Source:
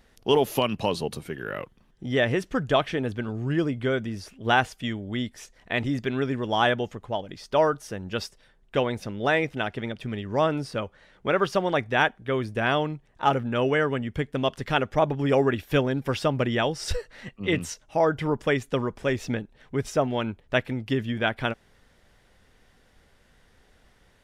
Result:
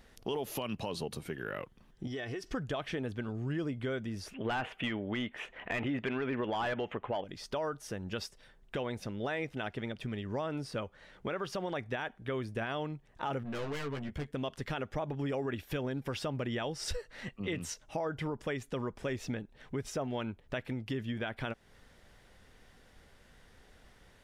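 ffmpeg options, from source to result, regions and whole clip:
-filter_complex "[0:a]asettb=1/sr,asplit=3[a][b][c];[a]atrim=end=2.074[d];[b]atrim=start=2.07:end=2.53,asetpts=PTS-STARTPTS,afade=t=in:d=0.004:c=qsin,afade=t=out:st=0.456:d=0.004:c=qsin,equalizer=f=5.1k:w=3.4:g=10.5,aecho=1:1:2.7:0.6,atrim=end_sample=20286,acompressor=threshold=-33dB:ratio=4:attack=3.2:release=140:knee=1:detection=peak[e];[c]atrim=start=2.526[f];[d][e]acrossfade=d=0.004:c1=hsin:c2=qsin[g];[g][f]acrossfade=d=0.004:c1=qsin:c2=hsin,asettb=1/sr,asplit=3[h][i][j];[h]atrim=end=4.344[k];[i]atrim=start=4.34:end=7.24,asetpts=PTS-STARTPTS,afade=t=in:d=0.004:c=qsin,afade=t=out:st=2.896:d=0.004:c=qsin,highshelf=f=3.8k:t=q:w=3:g=-10,asplit=2[l][m];[m]highpass=f=720:p=1,volume=21dB,asoftclip=type=tanh:threshold=-4dB[n];[l][n]amix=inputs=2:normalize=0,lowpass=f=1.1k:p=1,volume=-6dB[o];[j]atrim=start=7.236[p];[k][o]acrossfade=d=0.004:c1=hsin:c2=qsin[q];[q][p]acrossfade=d=0.004:c1=qsin:c2=hsin,asettb=1/sr,asplit=3[r][s][t];[r]atrim=end=13.434[u];[s]atrim=start=13.43:end=14.31,asetpts=PTS-STARTPTS,afade=t=in:d=0.004:c=qsin,afade=t=out:st=0.876:d=0.004:c=qsin,aeval=exprs='(tanh(31.6*val(0)+0.4)-tanh(0.4))/31.6':c=same,asplit=2[v][w];[w]adelay=14,volume=-4dB[x];[v][x]amix=inputs=2:normalize=0,atrim=end_sample=38808[y];[t]atrim=start=14.306[z];[u][y]acrossfade=d=0.004:c1=hsin:c2=qsin[aa];[aa][z]acrossfade=d=0.004:c1=qsin:c2=hsin,alimiter=limit=-17dB:level=0:latency=1:release=57,acompressor=threshold=-39dB:ratio=2"

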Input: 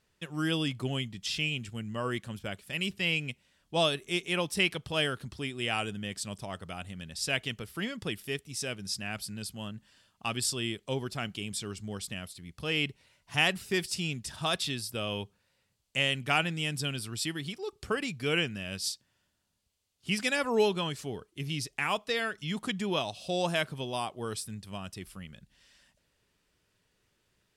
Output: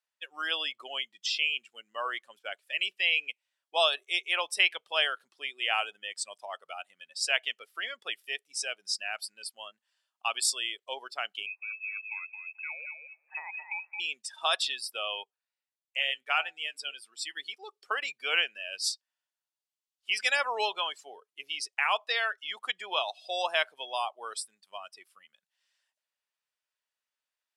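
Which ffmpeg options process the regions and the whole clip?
-filter_complex "[0:a]asettb=1/sr,asplit=3[a][b][c];[a]atrim=end=11.464[d];[b]atrim=start=11.46:end=14,asetpts=PTS-STARTPTS,afade=t=in:d=0.004:c=qsin,afade=t=out:st=2.536:d=0.004:c=qsin,acompressor=threshold=-36dB:ratio=6:attack=3.2:release=140:knee=1:detection=peak,aecho=1:1:218|436|654|872:0.596|0.179|0.0536|0.0161,atrim=end_sample=112014,lowpass=f=2.3k:t=q:w=0.5098,lowpass=f=2.3k:t=q:w=0.6013,lowpass=f=2.3k:t=q:w=0.9,lowpass=f=2.3k:t=q:w=2.563,afreqshift=-2700[e];[c]atrim=start=13.996[f];[d][e]acrossfade=d=0.004:c1=hsin:c2=qsin[g];[g][f]acrossfade=d=0.004:c1=qsin:c2=hsin,asettb=1/sr,asplit=3[h][i][j];[h]atrim=end=15.234[k];[i]atrim=start=15.23:end=17.37,asetpts=PTS-STARTPTS,afade=t=in:d=0.004:c=qsin,afade=t=out:st=2.136:d=0.004:c=qsin,lowshelf=f=130:g=-7.5,bandreject=f=149.8:t=h:w=4,bandreject=f=299.6:t=h:w=4,bandreject=f=449.4:t=h:w=4,bandreject=f=599.2:t=h:w=4,bandreject=f=749:t=h:w=4,bandreject=f=898.8:t=h:w=4,flanger=delay=4.3:depth=4.1:regen=74:speed=1.6:shape=triangular[l];[j]atrim=start=17.366[m];[k][l]acrossfade=d=0.004:c1=hsin:c2=qsin[n];[n][m]acrossfade=d=0.004:c1=qsin:c2=hsin,afftdn=nr=19:nf=-40,highpass=f=660:w=0.5412,highpass=f=660:w=1.3066,volume=4dB"

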